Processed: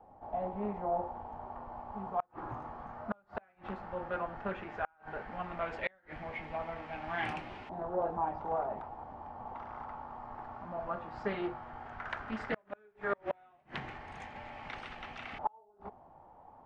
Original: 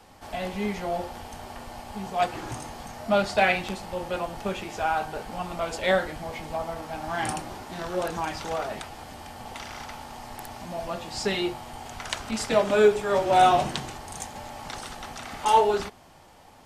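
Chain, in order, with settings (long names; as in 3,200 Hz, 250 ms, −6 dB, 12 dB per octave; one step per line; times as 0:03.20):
auto-filter low-pass saw up 0.13 Hz 780–2,600 Hz
gate with flip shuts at −12 dBFS, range −37 dB
highs frequency-modulated by the lows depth 0.23 ms
level −8.5 dB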